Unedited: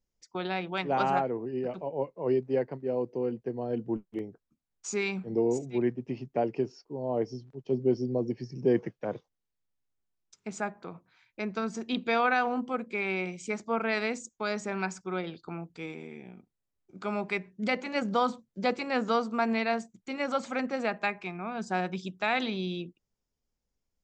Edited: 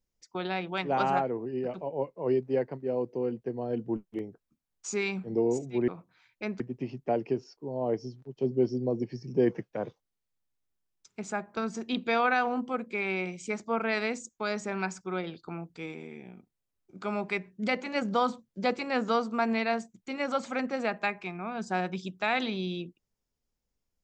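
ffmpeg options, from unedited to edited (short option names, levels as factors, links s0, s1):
-filter_complex "[0:a]asplit=4[s0][s1][s2][s3];[s0]atrim=end=5.882[s4];[s1]atrim=start=10.848:end=11.572[s5];[s2]atrim=start=5.878:end=10.852[s6];[s3]atrim=start=11.568[s7];[s4][s5]acrossfade=d=0.004:c1=hsin:c2=hsin[s8];[s8][s6]acrossfade=d=0.004:c1=hsin:c2=hsin[s9];[s9][s7]acrossfade=d=0.004:c1=hsin:c2=hsin"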